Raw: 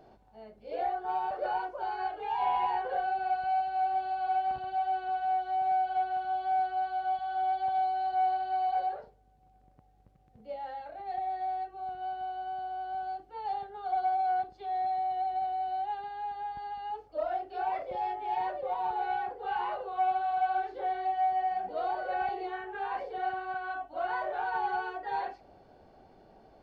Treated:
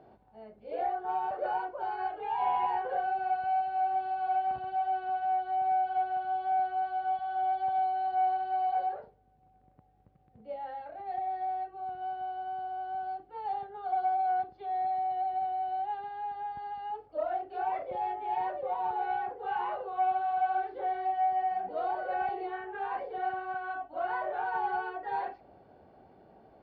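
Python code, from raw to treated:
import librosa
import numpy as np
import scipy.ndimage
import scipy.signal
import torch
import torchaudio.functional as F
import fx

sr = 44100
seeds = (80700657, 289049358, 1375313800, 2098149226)

y = scipy.signal.sosfilt(scipy.signal.butter(2, 70.0, 'highpass', fs=sr, output='sos'), x)
y = fx.air_absorb(y, sr, metres=280.0)
y = y * librosa.db_to_amplitude(1.0)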